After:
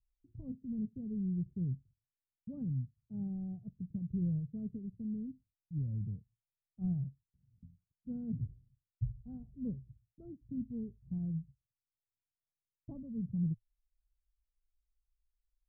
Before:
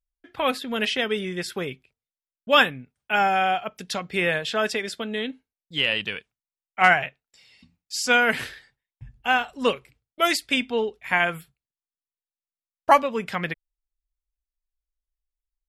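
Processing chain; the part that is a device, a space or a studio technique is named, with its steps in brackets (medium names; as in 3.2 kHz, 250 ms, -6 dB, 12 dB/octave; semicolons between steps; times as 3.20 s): the neighbour's flat through the wall (low-pass 170 Hz 24 dB/octave; peaking EQ 110 Hz +7 dB 0.47 oct); trim +4 dB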